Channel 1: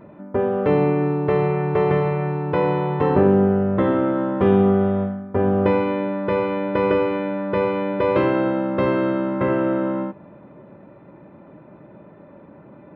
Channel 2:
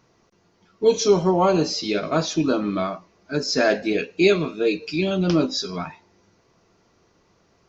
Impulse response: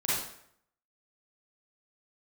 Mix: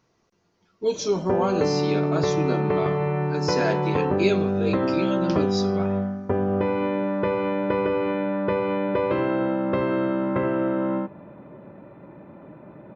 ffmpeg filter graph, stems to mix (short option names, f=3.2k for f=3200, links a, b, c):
-filter_complex "[0:a]acompressor=threshold=-20dB:ratio=6,adelay=950,volume=0.5dB[a];[1:a]volume=-6.5dB[b];[a][b]amix=inputs=2:normalize=0"